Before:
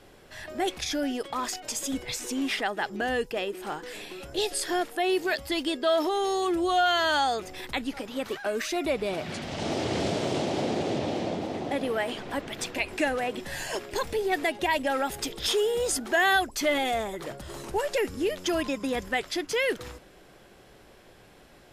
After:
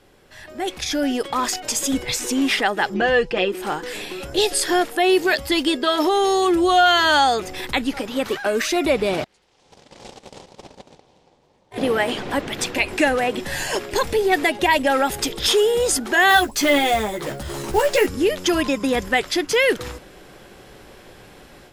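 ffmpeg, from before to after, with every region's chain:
ffmpeg -i in.wav -filter_complex "[0:a]asettb=1/sr,asplit=3[link_01][link_02][link_03];[link_01]atrim=end=2.944[link_04];[link_02]atrim=start=2.94:end=3.52,asetpts=PTS-STARTPTS,afade=type=in:duration=0.004:curve=qsin,afade=type=out:start_time=0.576:duration=0.004:curve=qsin,lowpass=4400,aecho=1:1:5.8:0.65,atrim=end_sample=25578[link_05];[link_03]atrim=start=3.516[link_06];[link_04][link_05]acrossfade=duration=0.004:curve1=hsin:curve2=qsin[link_07];[link_07][link_06]acrossfade=duration=0.004:curve1=qsin:curve2=hsin,asettb=1/sr,asplit=3[link_08][link_09][link_10];[link_08]atrim=end=9.244[link_11];[link_09]atrim=start=9.24:end=11.78,asetpts=PTS-STARTPTS,afade=type=in:duration=0.004:curve=qsin,afade=type=out:start_time=2.536:duration=0.004:curve=qsin,bass=frequency=250:gain=-10,treble=frequency=4000:gain=6,agate=range=-32dB:threshold=-27dB:ratio=16:release=100:detection=peak,aeval=exprs='val(0)*sin(2*PI*170*n/s)':channel_layout=same[link_12];[link_10]atrim=start=11.776[link_13];[link_11][link_12]acrossfade=duration=0.004:curve1=hsin:curve2=qsin[link_14];[link_14][link_13]acrossfade=duration=0.004:curve1=qsin:curve2=hsin,asettb=1/sr,asplit=3[link_15][link_16][link_17];[link_15]atrim=end=16.294[link_18];[link_16]atrim=start=16.29:end=18.07,asetpts=PTS-STARTPTS,afade=type=in:duration=0.004:curve=qsin,afade=type=out:start_time=1.776:duration=0.004:curve=qsin,acrusher=bits=5:mode=log:mix=0:aa=0.000001,asplit=2[link_19][link_20];[link_20]adelay=14,volume=-5dB[link_21];[link_19][link_21]amix=inputs=2:normalize=0,atrim=end_sample=78498[link_22];[link_17]atrim=start=18.066[link_23];[link_18][link_22]acrossfade=duration=0.004:curve1=hsin:curve2=qsin[link_24];[link_24][link_23]acrossfade=duration=0.004:curve1=qsin:curve2=hsin,bandreject=frequency=660:width=14,dynaudnorm=framelen=570:gausssize=3:maxgain=10.5dB,volume=-1dB" out.wav

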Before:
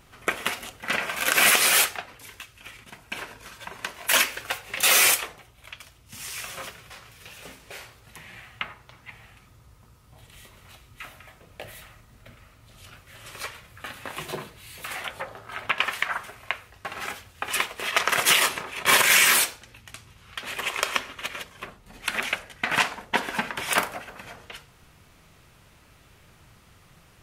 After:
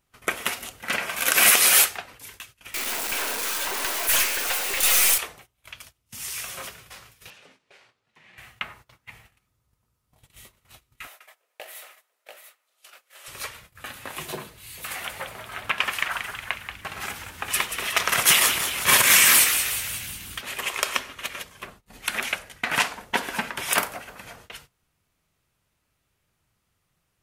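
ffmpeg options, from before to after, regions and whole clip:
ffmpeg -i in.wav -filter_complex "[0:a]asettb=1/sr,asplit=3[link_01][link_02][link_03];[link_01]atrim=end=2.744[link_04];[link_02]atrim=start=2.74:end=5.18,asetpts=PTS-STARTPTS,afade=type=in:duration=0.004:curve=qsin,afade=type=out:start_time=2.436:duration=0.004:curve=qsin,aeval=exprs='val(0)+0.5*0.0891*sgn(val(0))':channel_layout=same,highpass=frequency=270:width=0.5412,highpass=frequency=270:width=1.3066,aeval=exprs='(tanh(8.91*val(0)+0.65)-tanh(0.65))/8.91':channel_layout=same[link_05];[link_03]atrim=start=5.176[link_06];[link_04][link_05]acrossfade=duration=0.004:curve1=hsin:curve2=qsin[link_07];[link_07][link_06]acrossfade=duration=0.004:curve1=qsin:curve2=hsin,asettb=1/sr,asplit=3[link_08][link_09][link_10];[link_08]atrim=end=7.304[link_11];[link_09]atrim=start=7.3:end=8.38,asetpts=PTS-STARTPTS,afade=type=in:duration=0.004:curve=qsin,afade=type=out:start_time=1.076:duration=0.004:curve=qsin,highpass=170,lowpass=4500,acompressor=threshold=-44dB:ratio=20:attack=3.2:release=140:knee=1:detection=peak[link_12];[link_10]atrim=start=8.376[link_13];[link_11][link_12]acrossfade=duration=0.004:curve1=hsin:curve2=qsin[link_14];[link_14][link_13]acrossfade=duration=0.004:curve1=qsin:curve2=hsin,asettb=1/sr,asplit=3[link_15][link_16][link_17];[link_15]atrim=end=11.074[link_18];[link_16]atrim=start=11.07:end=13.28,asetpts=PTS-STARTPTS,afade=type=in:duration=0.004:curve=qsin,afade=type=out:start_time=2.206:duration=0.004:curve=qsin,highpass=frequency=460:width=0.5412,highpass=frequency=460:width=1.3066,aecho=1:1:43|228|690:0.266|0.211|0.562,atrim=end_sample=97461[link_19];[link_17]atrim=start=13.276[link_20];[link_18][link_19]acrossfade=duration=0.004:curve1=hsin:curve2=qsin[link_21];[link_21][link_20]acrossfade=duration=0.004:curve1=qsin:curve2=hsin,asettb=1/sr,asplit=3[link_22][link_23][link_24];[link_22]atrim=end=14.654[link_25];[link_23]atrim=start=14.65:end=20.41,asetpts=PTS-STARTPTS,afade=type=in:duration=0.004:curve=qsin,afade=type=out:start_time=5.756:duration=0.004:curve=qsin,asubboost=boost=2.5:cutoff=200,asplit=8[link_26][link_27][link_28][link_29][link_30][link_31][link_32][link_33];[link_27]adelay=182,afreqshift=97,volume=-8dB[link_34];[link_28]adelay=364,afreqshift=194,volume=-12.6dB[link_35];[link_29]adelay=546,afreqshift=291,volume=-17.2dB[link_36];[link_30]adelay=728,afreqshift=388,volume=-21.7dB[link_37];[link_31]adelay=910,afreqshift=485,volume=-26.3dB[link_38];[link_32]adelay=1092,afreqshift=582,volume=-30.9dB[link_39];[link_33]adelay=1274,afreqshift=679,volume=-35.5dB[link_40];[link_26][link_34][link_35][link_36][link_37][link_38][link_39][link_40]amix=inputs=8:normalize=0,atrim=end_sample=254016[link_41];[link_24]atrim=start=20.406[link_42];[link_25][link_41]acrossfade=duration=0.004:curve1=hsin:curve2=qsin[link_43];[link_43][link_42]acrossfade=duration=0.004:curve1=qsin:curve2=hsin,agate=range=-19dB:threshold=-48dB:ratio=16:detection=peak,highshelf=frequency=6500:gain=8,volume=-1dB" out.wav

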